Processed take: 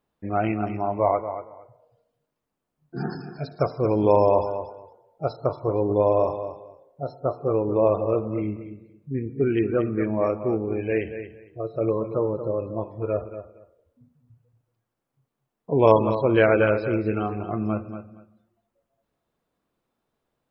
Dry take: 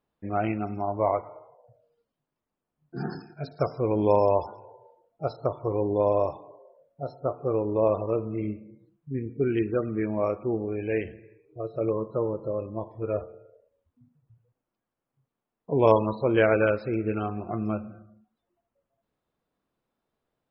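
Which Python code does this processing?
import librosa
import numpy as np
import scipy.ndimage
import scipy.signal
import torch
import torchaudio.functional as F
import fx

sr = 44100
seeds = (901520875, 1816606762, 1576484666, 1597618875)

y = fx.echo_feedback(x, sr, ms=232, feedback_pct=18, wet_db=-10.5)
y = y * librosa.db_to_amplitude(3.0)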